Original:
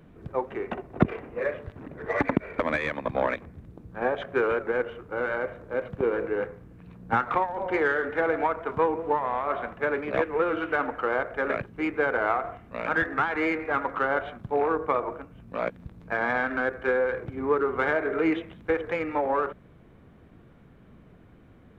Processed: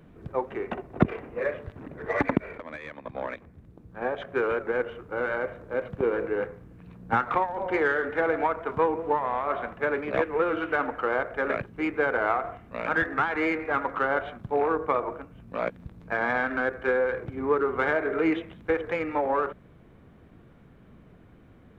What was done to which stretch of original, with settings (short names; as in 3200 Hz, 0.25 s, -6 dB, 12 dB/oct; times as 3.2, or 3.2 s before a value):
2.58–4.92 fade in, from -15 dB